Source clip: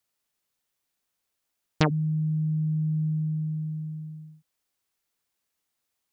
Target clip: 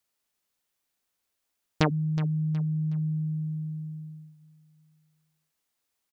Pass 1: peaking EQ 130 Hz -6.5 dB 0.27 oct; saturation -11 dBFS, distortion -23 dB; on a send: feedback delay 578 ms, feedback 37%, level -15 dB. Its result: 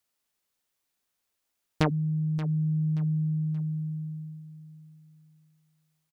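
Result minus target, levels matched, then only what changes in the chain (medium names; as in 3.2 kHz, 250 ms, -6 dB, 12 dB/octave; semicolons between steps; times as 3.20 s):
echo 210 ms late; saturation: distortion +12 dB
change: saturation -3.5 dBFS, distortion -35 dB; change: feedback delay 368 ms, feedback 37%, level -15 dB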